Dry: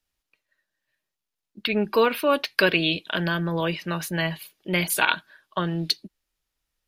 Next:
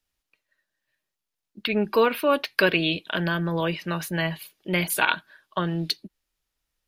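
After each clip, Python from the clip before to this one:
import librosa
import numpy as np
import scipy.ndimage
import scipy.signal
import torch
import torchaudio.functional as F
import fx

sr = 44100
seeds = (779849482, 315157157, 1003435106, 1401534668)

y = fx.dynamic_eq(x, sr, hz=5900.0, q=0.74, threshold_db=-38.0, ratio=4.0, max_db=-4)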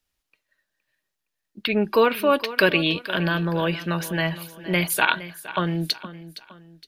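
y = fx.echo_feedback(x, sr, ms=465, feedback_pct=38, wet_db=-15.5)
y = y * librosa.db_to_amplitude(2.0)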